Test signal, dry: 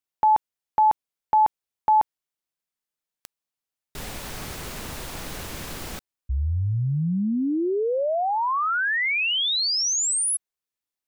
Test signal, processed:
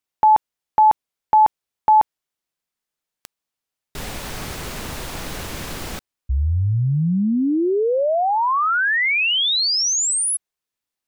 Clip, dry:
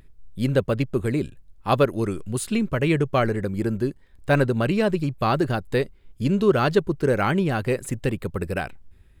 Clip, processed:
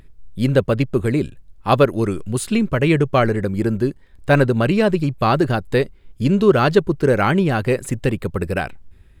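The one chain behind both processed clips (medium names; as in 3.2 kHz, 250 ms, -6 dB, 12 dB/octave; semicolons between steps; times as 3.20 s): treble shelf 8.4 kHz -3.5 dB; trim +5 dB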